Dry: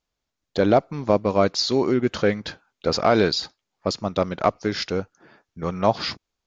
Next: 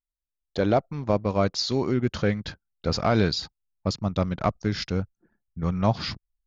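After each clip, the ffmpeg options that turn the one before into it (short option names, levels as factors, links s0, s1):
-af "anlmdn=0.0631,asubboost=boost=4.5:cutoff=190,volume=0.631"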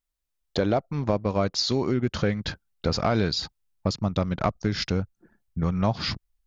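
-af "acompressor=threshold=0.0282:ratio=2.5,volume=2.24"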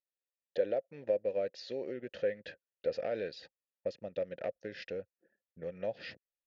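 -filter_complex "[0:a]asplit=3[s0][s1][s2];[s0]bandpass=f=530:t=q:w=8,volume=1[s3];[s1]bandpass=f=1840:t=q:w=8,volume=0.501[s4];[s2]bandpass=f=2480:t=q:w=8,volume=0.355[s5];[s3][s4][s5]amix=inputs=3:normalize=0"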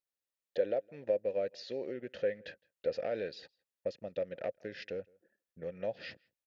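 -filter_complex "[0:a]asplit=2[s0][s1];[s1]adelay=163.3,volume=0.0398,highshelf=f=4000:g=-3.67[s2];[s0][s2]amix=inputs=2:normalize=0"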